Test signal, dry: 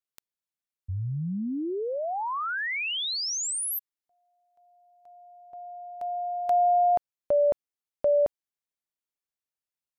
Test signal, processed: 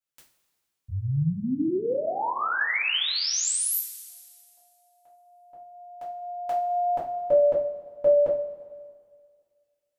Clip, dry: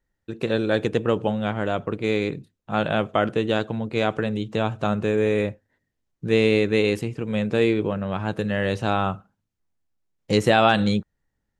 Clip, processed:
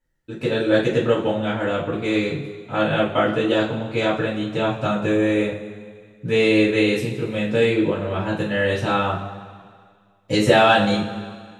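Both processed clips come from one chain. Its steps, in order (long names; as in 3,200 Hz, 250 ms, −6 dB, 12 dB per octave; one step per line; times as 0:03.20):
coupled-rooms reverb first 0.32 s, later 2 s, from −17 dB, DRR −8 dB
level −5 dB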